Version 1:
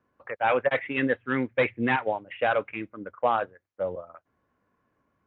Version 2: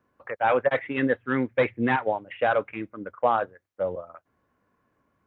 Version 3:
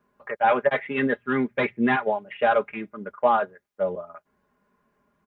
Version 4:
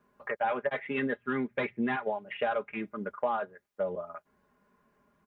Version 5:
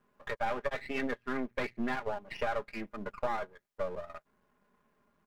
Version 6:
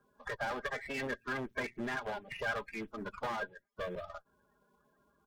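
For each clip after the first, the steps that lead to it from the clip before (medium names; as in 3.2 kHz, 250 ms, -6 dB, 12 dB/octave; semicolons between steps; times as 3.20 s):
dynamic bell 2.6 kHz, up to -6 dB, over -43 dBFS, Q 1.6; trim +2 dB
comb 4.9 ms, depth 79%
compression 3:1, threshold -30 dBFS, peak gain reduction 11.5 dB
partial rectifier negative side -12 dB
coarse spectral quantiser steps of 30 dB; one-sided clip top -34 dBFS; small resonant body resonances 1.6/3.4 kHz, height 9 dB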